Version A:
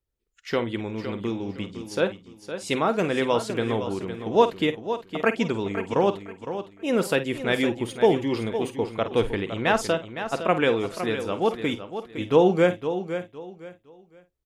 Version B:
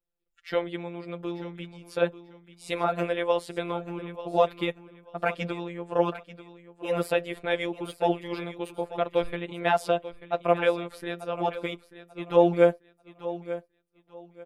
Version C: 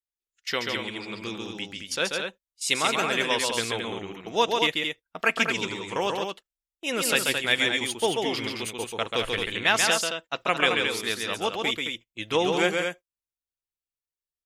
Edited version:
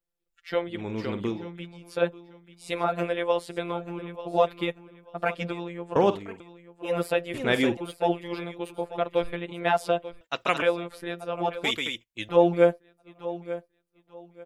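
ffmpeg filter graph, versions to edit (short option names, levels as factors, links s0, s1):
-filter_complex "[0:a]asplit=3[s0][s1][s2];[2:a]asplit=2[s3][s4];[1:a]asplit=6[s5][s6][s7][s8][s9][s10];[s5]atrim=end=0.91[s11];[s0]atrim=start=0.67:end=1.49[s12];[s6]atrim=start=1.25:end=5.962[s13];[s1]atrim=start=5.958:end=6.402[s14];[s7]atrim=start=6.398:end=7.342[s15];[s2]atrim=start=7.338:end=7.772[s16];[s8]atrim=start=7.768:end=10.212[s17];[s3]atrim=start=10.208:end=10.622[s18];[s9]atrim=start=10.618:end=11.642[s19];[s4]atrim=start=11.638:end=12.292[s20];[s10]atrim=start=12.288[s21];[s11][s12]acrossfade=d=0.24:c1=tri:c2=tri[s22];[s22][s13]acrossfade=d=0.24:c1=tri:c2=tri[s23];[s23][s14]acrossfade=d=0.004:c1=hsin:c2=hsin[s24];[s24][s15]acrossfade=d=0.004:c1=hsin:c2=hsin[s25];[s25][s16]acrossfade=d=0.004:c1=hsin:c2=hsin[s26];[s26][s17]acrossfade=d=0.004:c1=hsin:c2=hsin[s27];[s27][s18]acrossfade=d=0.004:c1=hsin:c2=hsin[s28];[s28][s19]acrossfade=d=0.004:c1=hsin:c2=hsin[s29];[s29][s20]acrossfade=d=0.004:c1=hsin:c2=hsin[s30];[s30][s21]acrossfade=d=0.004:c1=hsin:c2=hsin"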